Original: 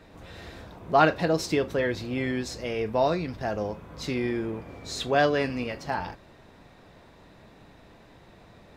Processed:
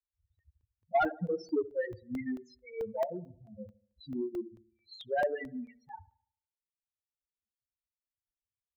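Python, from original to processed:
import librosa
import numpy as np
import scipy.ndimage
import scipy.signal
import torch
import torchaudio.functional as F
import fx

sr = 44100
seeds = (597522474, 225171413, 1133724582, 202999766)

y = fx.bin_expand(x, sr, power=3.0)
y = scipy.signal.sosfilt(scipy.signal.butter(2, 110.0, 'highpass', fs=sr, output='sos'), y)
y = fx.spec_topn(y, sr, count=4)
y = scipy.signal.sosfilt(scipy.signal.butter(2, 3400.0, 'lowpass', fs=sr, output='sos'), y)
y = fx.echo_wet_lowpass(y, sr, ms=73, feedback_pct=44, hz=1000.0, wet_db=-7.0)
y = 10.0 ** (-19.0 / 20.0) * np.tanh(y / 10.0 ** (-19.0 / 20.0))
y = fx.dereverb_blind(y, sr, rt60_s=1.0)
y = fx.buffer_crackle(y, sr, first_s=0.39, period_s=0.22, block=64, kind='zero')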